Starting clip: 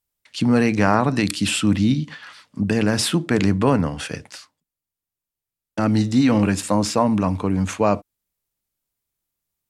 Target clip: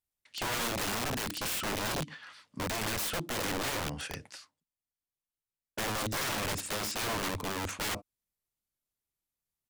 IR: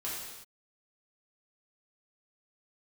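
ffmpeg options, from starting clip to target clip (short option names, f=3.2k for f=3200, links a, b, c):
-af "aresample=32000,aresample=44100,aeval=exprs='(mod(8.91*val(0)+1,2)-1)/8.91':c=same,volume=-9dB"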